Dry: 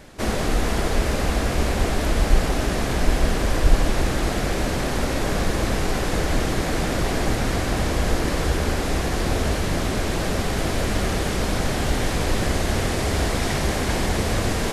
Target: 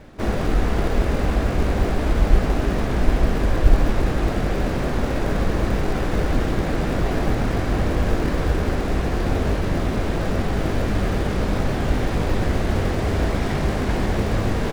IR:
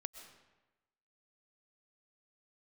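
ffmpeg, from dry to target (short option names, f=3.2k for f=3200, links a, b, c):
-filter_complex "[0:a]lowpass=f=1.8k:p=1,asplit=2[a][b];[b]acrusher=samples=41:mix=1:aa=0.000001,volume=-11dB[c];[a][c]amix=inputs=2:normalize=0,asplit=2[d][e];[e]adelay=20,volume=-11.5dB[f];[d][f]amix=inputs=2:normalize=0"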